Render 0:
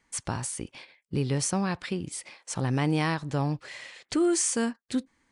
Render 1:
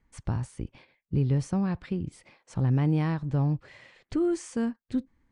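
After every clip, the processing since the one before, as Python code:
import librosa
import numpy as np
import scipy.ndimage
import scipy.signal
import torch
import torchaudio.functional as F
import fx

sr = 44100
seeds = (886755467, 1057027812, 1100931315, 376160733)

y = fx.riaa(x, sr, side='playback')
y = F.gain(torch.from_numpy(y), -6.5).numpy()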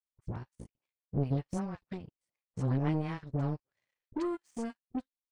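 y = fx.dispersion(x, sr, late='highs', ms=87.0, hz=910.0)
y = fx.power_curve(y, sr, exponent=2.0)
y = F.gain(torch.from_numpy(y), -1.5).numpy()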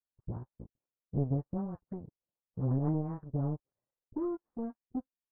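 y = scipy.signal.sosfilt(scipy.signal.bessel(6, 760.0, 'lowpass', norm='mag', fs=sr, output='sos'), x)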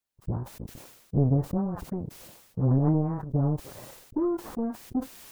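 y = fx.sustainer(x, sr, db_per_s=56.0)
y = F.gain(torch.from_numpy(y), 7.5).numpy()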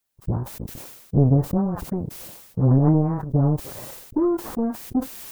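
y = fx.high_shelf(x, sr, hz=9500.0, db=6.0)
y = F.gain(torch.from_numpy(y), 6.0).numpy()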